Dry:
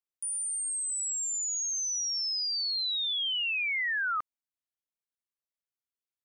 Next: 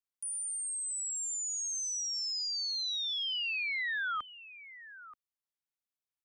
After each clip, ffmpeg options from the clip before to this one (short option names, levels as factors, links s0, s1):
-filter_complex "[0:a]aecho=1:1:930:0.15,acrossover=split=290|410|3400[s0][s1][s2][s3];[s1]acrusher=samples=39:mix=1:aa=0.000001[s4];[s0][s4][s2][s3]amix=inputs=4:normalize=0,volume=0.631"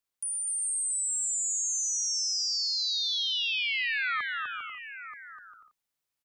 -filter_complex "[0:a]acompressor=threshold=0.0158:ratio=6,asplit=2[s0][s1];[s1]aecho=0:1:250|400|490|544|576.4:0.631|0.398|0.251|0.158|0.1[s2];[s0][s2]amix=inputs=2:normalize=0,volume=2"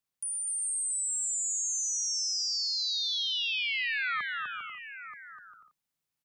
-af "equalizer=f=160:t=o:w=0.91:g=9.5,volume=0.841"